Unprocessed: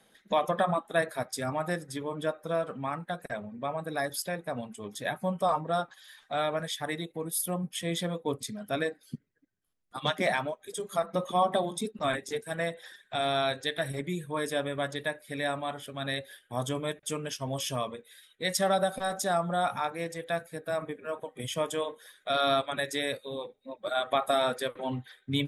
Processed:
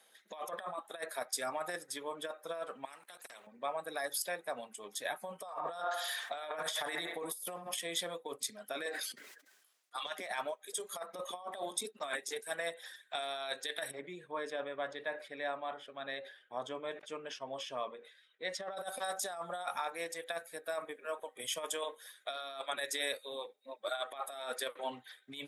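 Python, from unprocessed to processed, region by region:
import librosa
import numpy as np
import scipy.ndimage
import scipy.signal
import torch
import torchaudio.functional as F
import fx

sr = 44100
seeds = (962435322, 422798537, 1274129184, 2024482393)

y = fx.chain(x, sr, fx.level_steps(step_db=15),
    fx.spectral_comp(ratio=2.0), at=(2.85, 3.47))
y = fx.chain(y, sr, fx.hum_notches(base_hz=50, count=7),
    fx.echo_wet_bandpass(ms=74, feedback_pct=40, hz=1100.0, wet_db=-7.5),
    fx.env_flatten(amount_pct=50), at=(5.45, 7.79))
y = fx.chain(y, sr, fx.weighting(curve='A'),
    fx.sustainer(db_per_s=52.0), at=(8.86, 10.06))
y = fx.chain(y, sr, fx.spacing_loss(db_at_10k=28),
    fx.sustainer(db_per_s=120.0), at=(13.91, 18.77))
y = fx.high_shelf(y, sr, hz=4000.0, db=5.0)
y = fx.over_compress(y, sr, threshold_db=-30.0, ratio=-0.5)
y = scipy.signal.sosfilt(scipy.signal.butter(2, 510.0, 'highpass', fs=sr, output='sos'), y)
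y = y * 10.0 ** (-5.0 / 20.0)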